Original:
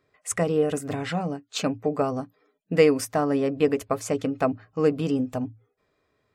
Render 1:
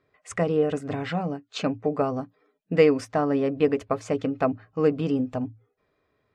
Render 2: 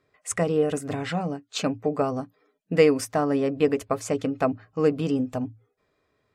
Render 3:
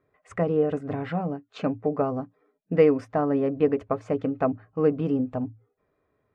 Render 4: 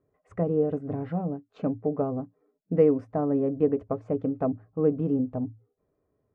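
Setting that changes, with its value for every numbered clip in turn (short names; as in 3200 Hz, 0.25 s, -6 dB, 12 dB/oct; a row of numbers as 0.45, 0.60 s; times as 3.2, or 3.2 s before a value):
Bessel low-pass, frequency: 3700, 12000, 1400, 530 Hz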